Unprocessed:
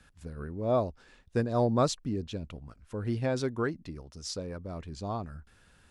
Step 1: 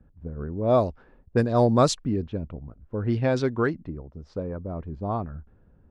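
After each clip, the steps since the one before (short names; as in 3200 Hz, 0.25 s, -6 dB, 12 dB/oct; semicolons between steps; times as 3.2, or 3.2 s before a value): low-pass opened by the level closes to 440 Hz, open at -22 dBFS; gain +6.5 dB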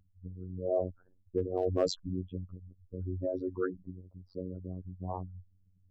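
formant sharpening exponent 3; overloaded stage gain 11 dB; robotiser 91.8 Hz; gain -7 dB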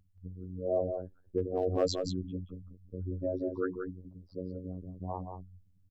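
echo 0.178 s -6.5 dB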